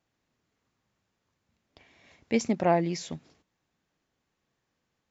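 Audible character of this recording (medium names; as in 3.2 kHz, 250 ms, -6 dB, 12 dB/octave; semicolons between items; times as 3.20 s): noise floor -81 dBFS; spectral tilt -5.5 dB/octave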